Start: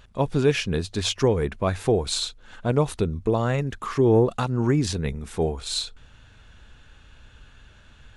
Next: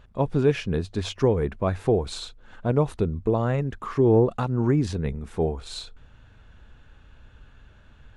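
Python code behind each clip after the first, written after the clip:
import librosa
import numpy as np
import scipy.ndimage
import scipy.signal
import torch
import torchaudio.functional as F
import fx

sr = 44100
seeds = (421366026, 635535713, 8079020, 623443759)

y = fx.high_shelf(x, sr, hz=2400.0, db=-12.0)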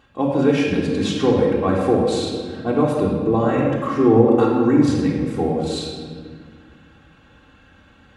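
y = scipy.signal.sosfilt(scipy.signal.butter(2, 140.0, 'highpass', fs=sr, output='sos'), x)
y = y + 0.56 * np.pad(y, (int(3.7 * sr / 1000.0), 0))[:len(y)]
y = fx.room_shoebox(y, sr, seeds[0], volume_m3=2500.0, walls='mixed', distance_m=3.5)
y = y * librosa.db_to_amplitude(1.0)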